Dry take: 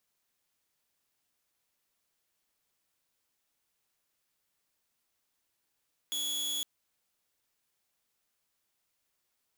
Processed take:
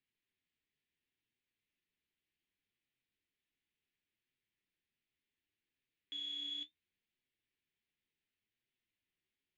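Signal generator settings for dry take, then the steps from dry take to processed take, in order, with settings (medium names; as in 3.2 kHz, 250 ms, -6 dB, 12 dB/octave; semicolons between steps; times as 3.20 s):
tone saw 3.37 kHz -29 dBFS 0.51 s
low-pass 3.4 kHz 24 dB/octave; high-order bell 860 Hz -15 dB; flange 0.69 Hz, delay 7.4 ms, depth 7.2 ms, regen +49%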